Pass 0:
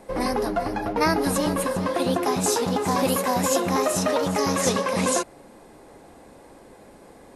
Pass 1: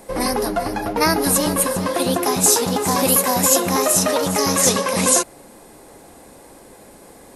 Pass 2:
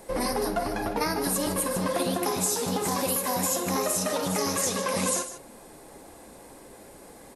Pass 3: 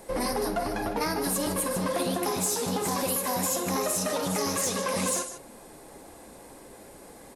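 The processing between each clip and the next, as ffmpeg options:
-af "aemphasis=mode=production:type=50kf,volume=1.41"
-filter_complex "[0:a]acompressor=threshold=0.1:ratio=6,flanger=delay=1.7:depth=6:regen=-59:speed=1.3:shape=triangular,asplit=2[s0][s1];[s1]aecho=0:1:53|153:0.251|0.237[s2];[s0][s2]amix=inputs=2:normalize=0"
-af "asoftclip=type=tanh:threshold=0.119"

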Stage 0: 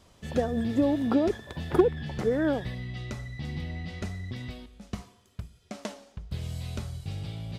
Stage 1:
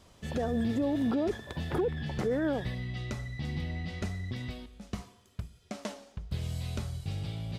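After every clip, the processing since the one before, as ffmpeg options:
-af "alimiter=limit=0.075:level=0:latency=1:release=13"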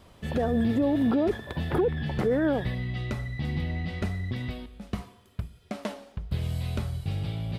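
-af "equalizer=f=6400:t=o:w=1:g=-9.5,volume=1.78"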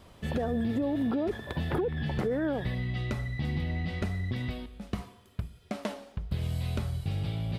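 -af "acompressor=threshold=0.0501:ratio=6"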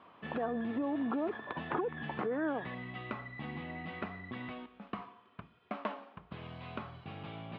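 -af "highpass=310,equalizer=f=390:t=q:w=4:g=-5,equalizer=f=550:t=q:w=4:g=-6,equalizer=f=1100:t=q:w=4:g=7,equalizer=f=2000:t=q:w=4:g=-4,lowpass=f=2700:w=0.5412,lowpass=f=2700:w=1.3066"

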